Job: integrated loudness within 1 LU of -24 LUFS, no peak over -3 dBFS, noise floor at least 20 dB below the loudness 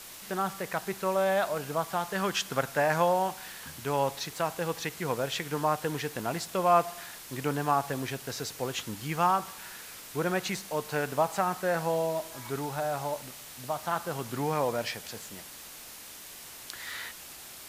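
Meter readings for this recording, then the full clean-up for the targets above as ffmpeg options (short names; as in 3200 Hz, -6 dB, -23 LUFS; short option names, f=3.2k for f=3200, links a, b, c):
noise floor -46 dBFS; noise floor target -51 dBFS; loudness -30.5 LUFS; peak -10.5 dBFS; loudness target -24.0 LUFS
-> -af "afftdn=nr=6:nf=-46"
-af "volume=6.5dB"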